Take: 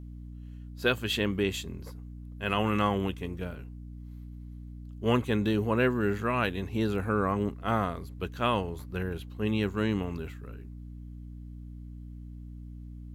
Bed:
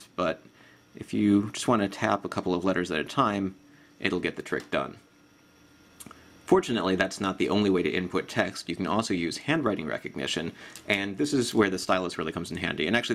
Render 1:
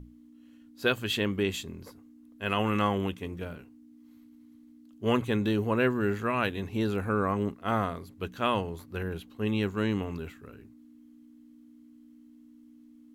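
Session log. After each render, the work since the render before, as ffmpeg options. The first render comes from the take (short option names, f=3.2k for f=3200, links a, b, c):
-af "bandreject=f=60:t=h:w=6,bandreject=f=120:t=h:w=6,bandreject=f=180:t=h:w=6"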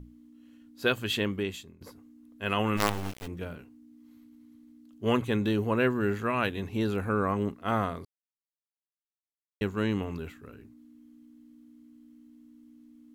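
-filter_complex "[0:a]asplit=3[a][b][c];[a]afade=t=out:st=2.76:d=0.02[d];[b]acrusher=bits=4:dc=4:mix=0:aa=0.000001,afade=t=in:st=2.76:d=0.02,afade=t=out:st=3.26:d=0.02[e];[c]afade=t=in:st=3.26:d=0.02[f];[d][e][f]amix=inputs=3:normalize=0,asplit=4[g][h][i][j];[g]atrim=end=1.81,asetpts=PTS-STARTPTS,afade=t=out:st=1.2:d=0.61:silence=0.133352[k];[h]atrim=start=1.81:end=8.05,asetpts=PTS-STARTPTS,afade=t=in:d=0.004:c=hsin:silence=0.133352,afade=t=out:st=6.236:d=0.004:c=hsin[l];[i]atrim=start=8.05:end=9.61,asetpts=PTS-STARTPTS,volume=0[m];[j]atrim=start=9.61,asetpts=PTS-STARTPTS,afade=t=in:d=0.004:c=hsin[n];[k][l][m][n]concat=n=4:v=0:a=1"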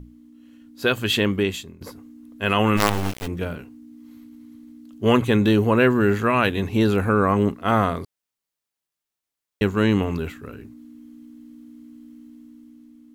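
-filter_complex "[0:a]asplit=2[a][b];[b]alimiter=limit=-20.5dB:level=0:latency=1,volume=-1.5dB[c];[a][c]amix=inputs=2:normalize=0,dynaudnorm=f=260:g=7:m=5dB"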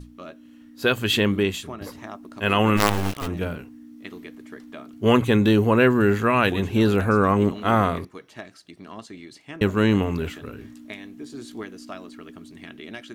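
-filter_complex "[1:a]volume=-13dB[a];[0:a][a]amix=inputs=2:normalize=0"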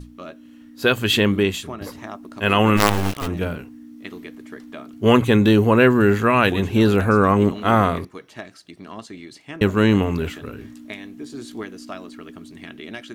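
-af "volume=3dB"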